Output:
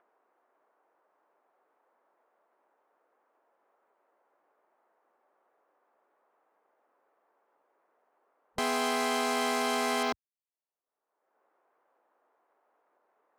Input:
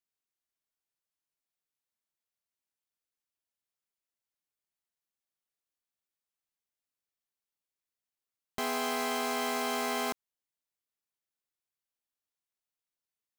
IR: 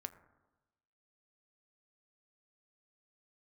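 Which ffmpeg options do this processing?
-filter_complex "[0:a]afwtdn=0.00398,acrossover=split=370|1200|5600[link_01][link_02][link_03][link_04];[link_02]acompressor=mode=upward:threshold=-40dB:ratio=2.5[link_05];[link_01][link_05][link_03][link_04]amix=inputs=4:normalize=0,volume=3dB"

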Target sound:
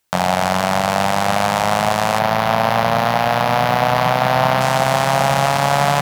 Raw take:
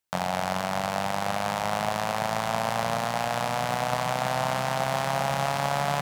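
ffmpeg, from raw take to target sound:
ffmpeg -i in.wav -filter_complex "[0:a]asettb=1/sr,asplit=3[link_01][link_02][link_03];[link_01]atrim=end=2.194[link_04];[link_02]atrim=start=2.19:end=4.61,asetpts=PTS-STARTPTS,afade=type=in:duration=0.004:curve=qsin,afade=type=out:start_time=2.416:duration=0.004:curve=qsin,equalizer=frequency=8000:width_type=o:width=0.75:gain=-14.5[link_05];[link_03]atrim=start=4.606[link_06];[link_04][link_05]acrossfade=duration=0.004:curve1=hsin:curve2=qsin[link_07];[link_07][link_06]acrossfade=duration=0.004:curve1=qsin:curve2=hsin,alimiter=level_in=15dB:limit=-1dB:release=50:level=0:latency=1,volume=-1dB" out.wav

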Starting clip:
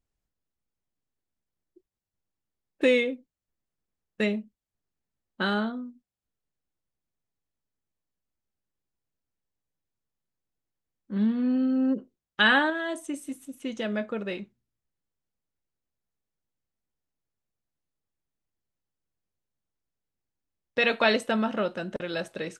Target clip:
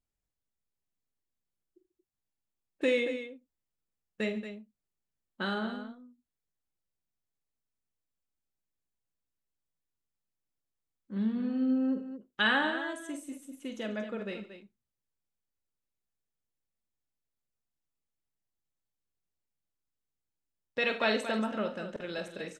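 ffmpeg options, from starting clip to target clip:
ffmpeg -i in.wav -af "equalizer=frequency=7400:width_type=o:width=0.23:gain=3.5,aecho=1:1:46|81|139|229:0.335|0.141|0.112|0.299,volume=-6.5dB" out.wav

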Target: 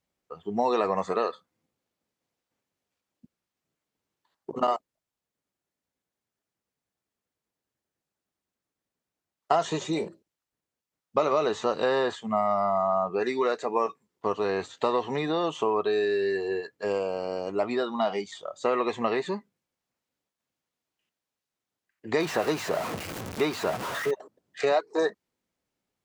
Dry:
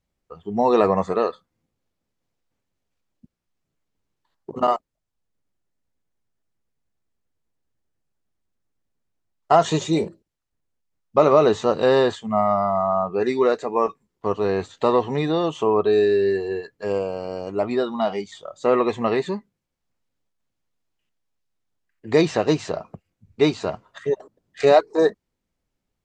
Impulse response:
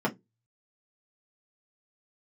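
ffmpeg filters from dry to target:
-filter_complex "[0:a]asettb=1/sr,asplit=3[link_01][link_02][link_03];[link_01]atrim=end=22.204[link_04];[link_02]atrim=start=22.2:end=24.11,asetpts=PTS-STARTPTS,afade=type=in:duration=0.004:curve=qsin,afade=type=out:start_time=1.906:duration=0.004:curve=qsin,aeval=exprs='val(0)+0.5*0.0531*sgn(val(0))':channel_layout=same[link_05];[link_03]atrim=start=24.106[link_06];[link_04][link_05]acrossfade=duration=0.004:curve1=hsin:curve2=qsin[link_07];[link_07][link_06]acrossfade=duration=0.004:curve1=qsin:curve2=hsin,acrossover=split=860|2000[link_08][link_09][link_10];[link_08]acompressor=threshold=-24dB:ratio=4[link_11];[link_09]acompressor=threshold=-29dB:ratio=4[link_12];[link_10]acompressor=threshold=-39dB:ratio=4[link_13];[link_11][link_12][link_13]amix=inputs=3:normalize=0,highpass=frequency=250:poles=1"

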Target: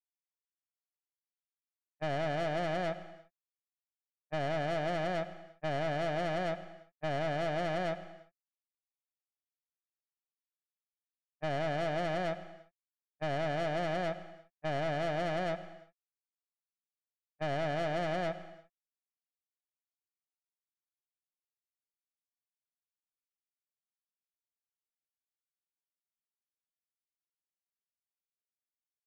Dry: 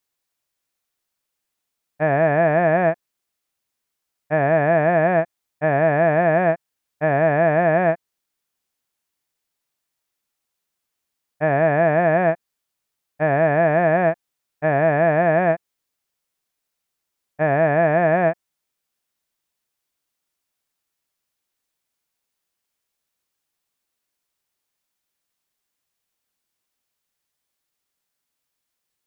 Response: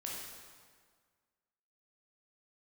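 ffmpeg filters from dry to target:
-filter_complex "[0:a]agate=range=-33dB:threshold=-15dB:ratio=3:detection=peak,acompressor=threshold=-19dB:ratio=3,aeval=exprs='(tanh(20*val(0)+0.65)-tanh(0.65))/20':channel_layout=same,asplit=2[link_01][link_02];[1:a]atrim=start_sample=2205,afade=type=out:start_time=0.31:duration=0.01,atrim=end_sample=14112,adelay=101[link_03];[link_02][link_03]afir=irnorm=-1:irlink=0,volume=-12.5dB[link_04];[link_01][link_04]amix=inputs=2:normalize=0,volume=-4.5dB"

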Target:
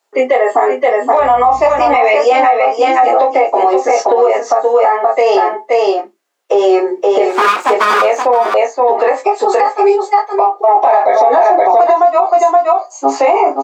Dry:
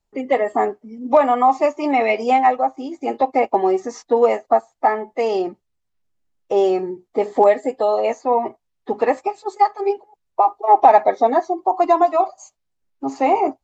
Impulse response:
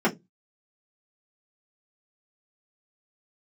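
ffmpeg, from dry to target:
-filter_complex "[0:a]asplit=2[link_01][link_02];[link_02]equalizer=frequency=1700:width_type=o:width=2.7:gain=14.5[link_03];[1:a]atrim=start_sample=2205[link_04];[link_03][link_04]afir=irnorm=-1:irlink=0,volume=-31.5dB[link_05];[link_01][link_05]amix=inputs=2:normalize=0,flanger=delay=18.5:depth=3.4:speed=0.88,asettb=1/sr,asplit=3[link_06][link_07][link_08];[link_06]atrim=end=7.294[link_09];[link_07]atrim=start=7.29:end=8.02,asetpts=PTS-STARTPTS,afade=type=in:duration=0.004:curve=qsin,afade=type=out:start_time=0.726:duration=0.004:curve=qsin,aeval=exprs='abs(val(0))':channel_layout=same[link_10];[link_08]atrim=start=8.016[link_11];[link_09][link_10]acrossfade=duration=0.004:curve1=hsin:curve2=qsin[link_12];[link_12][link_11]acrossfade=duration=0.004:curve1=qsin:curve2=hsin,highpass=frequency=400:width=0.5412,highpass=frequency=400:width=1.3066,asplit=2[link_13][link_14];[link_14]adelay=29,volume=-13.5dB[link_15];[link_13][link_15]amix=inputs=2:normalize=0,aecho=1:1:523:0.501,acompressor=threshold=-22dB:ratio=6,asettb=1/sr,asplit=3[link_16][link_17][link_18];[link_16]atrim=end=1.194[link_19];[link_17]atrim=start=1.19:end=1.96,asetpts=PTS-STARTPTS,afade=type=in:duration=0.004:curve=qsin,afade=type=out:start_time=0.766:duration=0.004:curve=qsin,aeval=exprs='val(0)+0.00251*(sin(2*PI*60*n/s)+sin(2*PI*2*60*n/s)/2+sin(2*PI*3*60*n/s)/3+sin(2*PI*4*60*n/s)/4+sin(2*PI*5*60*n/s)/5)':channel_layout=same[link_20];[link_18]atrim=start=1.956[link_21];[link_19][link_20]acrossfade=duration=0.004:curve1=hsin:curve2=qsin[link_22];[link_22][link_21]acrossfade=duration=0.004:curve1=qsin:curve2=hsin,asettb=1/sr,asplit=3[link_23][link_24][link_25];[link_23]atrim=end=10.754[link_26];[link_24]atrim=start=10.75:end=11.84,asetpts=PTS-STARTPTS,afade=type=in:duration=0.004:curve=qsin,afade=type=out:start_time=1.086:duration=0.004:curve=qsin,acontrast=79[link_27];[link_25]atrim=start=11.836[link_28];[link_26][link_27]acrossfade=duration=0.004:curve1=hsin:curve2=qsin[link_29];[link_29][link_28]acrossfade=duration=0.004:curve1=qsin:curve2=hsin,alimiter=level_in=19.5dB:limit=-1dB:release=50:level=0:latency=1,volume=-1dB"

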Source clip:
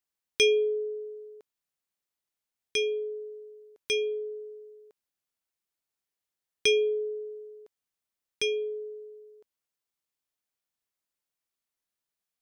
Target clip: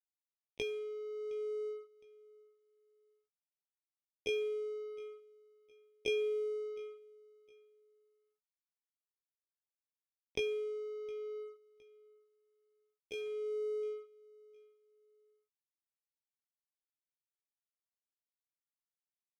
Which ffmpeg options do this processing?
ffmpeg -i in.wav -filter_complex "[0:a]lowpass=frequency=1500:poles=1,agate=range=-56dB:threshold=-41dB:ratio=16:detection=peak,lowshelf=frequency=240:gain=8.5,acompressor=threshold=-31dB:ratio=12,tremolo=f=0.78:d=0.62,aeval=exprs='sgn(val(0))*max(abs(val(0))-0.00168,0)':channel_layout=same,atempo=0.64,asplit=2[link_01][link_02];[link_02]adelay=14,volume=-13dB[link_03];[link_01][link_03]amix=inputs=2:normalize=0,aecho=1:1:713|1426:0.0708|0.0227,volume=-1dB" out.wav

